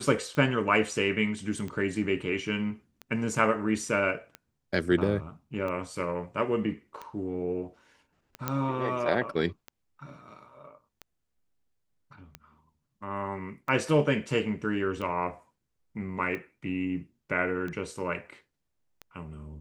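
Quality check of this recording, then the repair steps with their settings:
tick 45 rpm -24 dBFS
8.48 pop -13 dBFS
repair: de-click

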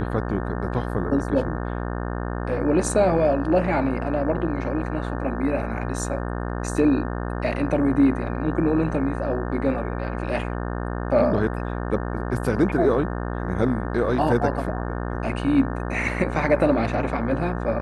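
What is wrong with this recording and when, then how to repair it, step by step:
buzz 60 Hz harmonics 30 -28 dBFS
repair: de-hum 60 Hz, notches 30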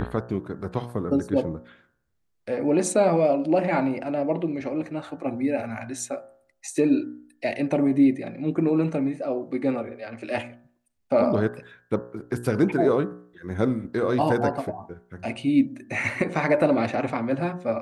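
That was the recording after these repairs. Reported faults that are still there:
none

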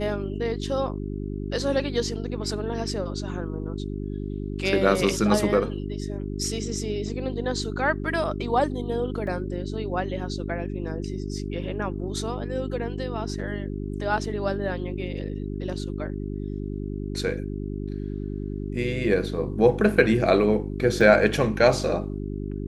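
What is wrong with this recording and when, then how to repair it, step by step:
hum 50 Hz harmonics 8 -31 dBFS
9.27 gap 2.7 ms
21.01 gap 3.5 ms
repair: de-hum 50 Hz, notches 8; interpolate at 9.27, 2.7 ms; interpolate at 21.01, 3.5 ms

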